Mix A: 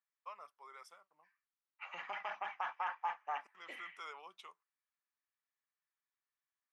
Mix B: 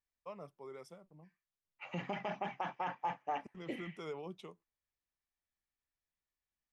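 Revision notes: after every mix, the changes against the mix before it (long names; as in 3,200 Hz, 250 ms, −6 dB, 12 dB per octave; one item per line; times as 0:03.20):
second voice: add spectral tilt +1.5 dB per octave
master: remove high-pass with resonance 1,200 Hz, resonance Q 1.9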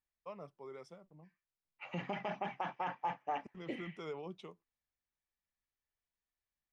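master: add low-pass filter 6,400 Hz 12 dB per octave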